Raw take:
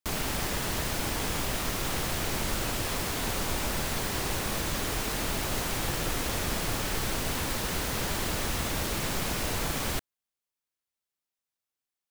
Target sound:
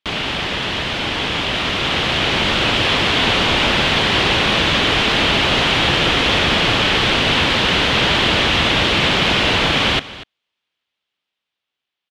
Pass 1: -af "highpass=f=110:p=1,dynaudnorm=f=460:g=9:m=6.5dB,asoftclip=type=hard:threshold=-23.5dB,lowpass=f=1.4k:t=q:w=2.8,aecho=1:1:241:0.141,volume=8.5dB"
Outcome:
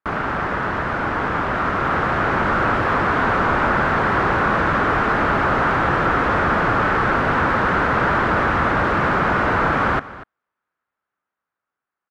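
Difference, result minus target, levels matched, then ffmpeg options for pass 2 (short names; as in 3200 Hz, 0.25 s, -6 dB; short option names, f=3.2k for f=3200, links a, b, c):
4000 Hz band -18.5 dB; hard clip: distortion +17 dB
-af "highpass=f=110:p=1,dynaudnorm=f=460:g=9:m=6.5dB,asoftclip=type=hard:threshold=-17dB,lowpass=f=3.2k:t=q:w=2.8,aecho=1:1:241:0.141,volume=8.5dB"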